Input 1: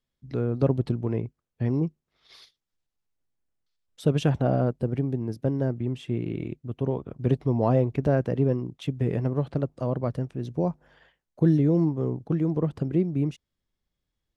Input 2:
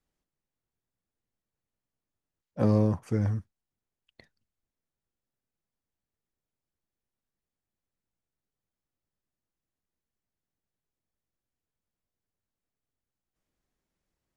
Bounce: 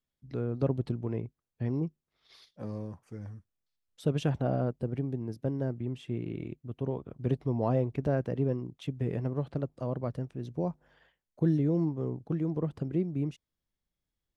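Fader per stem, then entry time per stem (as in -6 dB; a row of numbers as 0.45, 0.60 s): -6.0, -15.0 dB; 0.00, 0.00 s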